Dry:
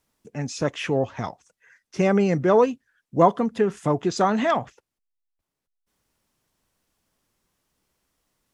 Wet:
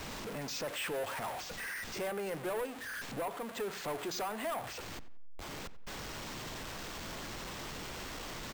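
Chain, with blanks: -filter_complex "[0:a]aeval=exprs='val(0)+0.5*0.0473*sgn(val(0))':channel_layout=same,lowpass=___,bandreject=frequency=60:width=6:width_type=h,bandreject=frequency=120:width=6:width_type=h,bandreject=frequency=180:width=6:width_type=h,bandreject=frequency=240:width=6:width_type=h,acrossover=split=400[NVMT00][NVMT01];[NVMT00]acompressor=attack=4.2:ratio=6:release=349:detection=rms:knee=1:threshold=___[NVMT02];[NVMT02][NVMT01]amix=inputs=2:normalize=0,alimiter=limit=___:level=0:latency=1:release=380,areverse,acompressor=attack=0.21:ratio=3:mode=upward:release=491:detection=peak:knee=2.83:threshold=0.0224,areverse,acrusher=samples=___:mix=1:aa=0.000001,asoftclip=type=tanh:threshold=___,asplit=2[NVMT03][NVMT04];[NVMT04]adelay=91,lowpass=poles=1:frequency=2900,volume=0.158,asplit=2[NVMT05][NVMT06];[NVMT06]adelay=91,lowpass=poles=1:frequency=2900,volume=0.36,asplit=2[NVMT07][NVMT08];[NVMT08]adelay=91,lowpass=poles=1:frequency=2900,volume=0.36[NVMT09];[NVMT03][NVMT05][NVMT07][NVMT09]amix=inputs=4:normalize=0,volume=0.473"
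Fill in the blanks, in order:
5300, 0.0158, 0.178, 4, 0.0501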